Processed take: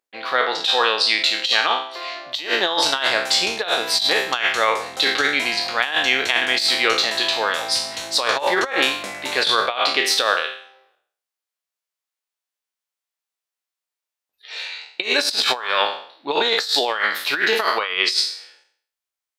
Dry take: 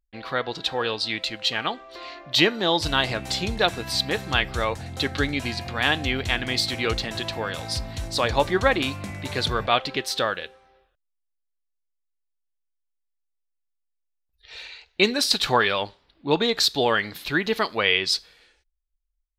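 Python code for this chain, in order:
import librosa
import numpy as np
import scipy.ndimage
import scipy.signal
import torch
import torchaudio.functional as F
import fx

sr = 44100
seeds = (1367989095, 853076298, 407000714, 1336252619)

y = fx.spec_trails(x, sr, decay_s=0.55)
y = scipy.signal.sosfilt(scipy.signal.butter(2, 530.0, 'highpass', fs=sr, output='sos'), y)
y = fx.high_shelf(y, sr, hz=8800.0, db=-3.5)
y = fx.over_compress(y, sr, threshold_db=-24.0, ratio=-0.5)
y = y * 10.0 ** (5.5 / 20.0)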